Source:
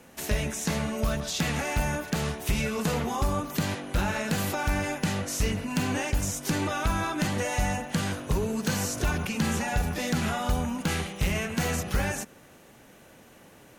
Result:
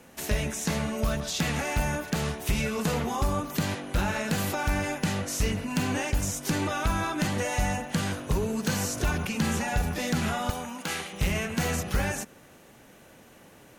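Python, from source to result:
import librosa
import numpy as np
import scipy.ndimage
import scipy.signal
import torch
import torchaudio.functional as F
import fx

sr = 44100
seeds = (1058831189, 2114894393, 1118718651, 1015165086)

y = fx.highpass(x, sr, hz=570.0, slope=6, at=(10.5, 11.13))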